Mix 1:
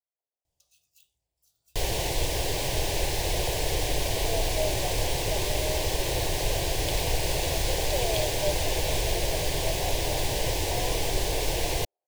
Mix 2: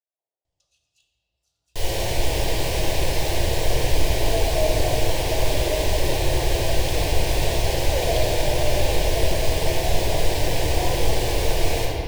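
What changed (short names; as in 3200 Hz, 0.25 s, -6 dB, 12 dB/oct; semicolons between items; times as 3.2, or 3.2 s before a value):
first sound: add air absorption 81 m; second sound -5.5 dB; reverb: on, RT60 2.9 s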